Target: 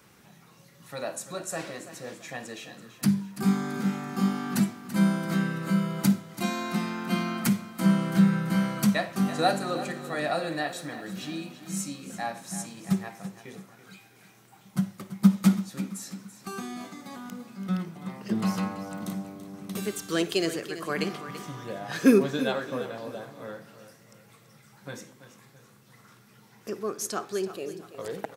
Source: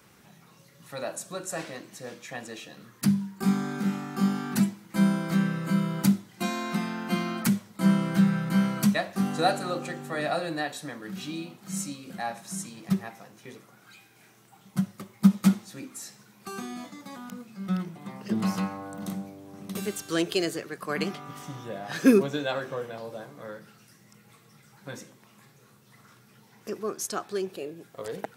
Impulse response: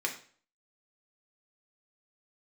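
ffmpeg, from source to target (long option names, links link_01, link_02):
-filter_complex "[0:a]asettb=1/sr,asplit=3[link_01][link_02][link_03];[link_01]atrim=end=10.474[link_04];[link_02]atrim=start=10.47:end=11.36,asetpts=PTS-STARTPTS,afade=type=in:duration=0.004:curve=qsin,afade=type=out:start_time=0.886:duration=0.004:curve=qsin,aeval=exprs='val(0)*gte(abs(val(0)),0.0015)':channel_layout=same[link_05];[link_03]atrim=start=11.356[link_06];[link_04][link_05]acrossfade=duration=0.004:curve1=hsin:curve2=qsin[link_07];[link_07][link_06]acrossfade=duration=0.004:curve1=qsin:curve2=hsin,aecho=1:1:334|668|1002|1336:0.224|0.094|0.0395|0.0166,asplit=2[link_08][link_09];[1:a]atrim=start_sample=2205,adelay=53[link_10];[link_09][link_10]afir=irnorm=-1:irlink=0,volume=-21dB[link_11];[link_08][link_11]amix=inputs=2:normalize=0"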